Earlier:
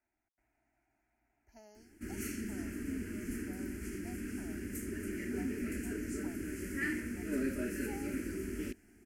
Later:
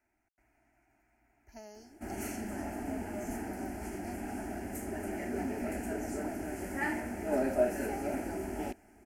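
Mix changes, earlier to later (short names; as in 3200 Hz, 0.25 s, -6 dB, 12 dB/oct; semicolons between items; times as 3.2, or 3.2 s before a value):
speech +8.0 dB; background: remove Butterworth band-stop 760 Hz, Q 0.74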